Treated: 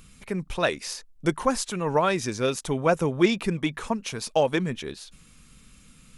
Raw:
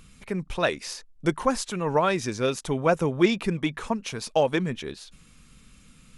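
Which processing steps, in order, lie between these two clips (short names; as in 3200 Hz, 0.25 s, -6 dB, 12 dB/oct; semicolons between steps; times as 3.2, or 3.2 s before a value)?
high shelf 8300 Hz +5.5 dB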